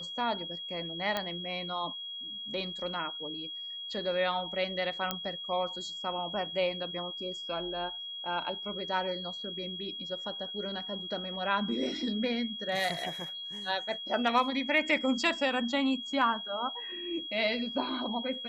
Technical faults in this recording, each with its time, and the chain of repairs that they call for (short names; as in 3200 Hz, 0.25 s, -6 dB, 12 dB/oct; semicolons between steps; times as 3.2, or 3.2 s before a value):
tone 3300 Hz -38 dBFS
1.17 pop -16 dBFS
5.11 pop -14 dBFS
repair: de-click; notch 3300 Hz, Q 30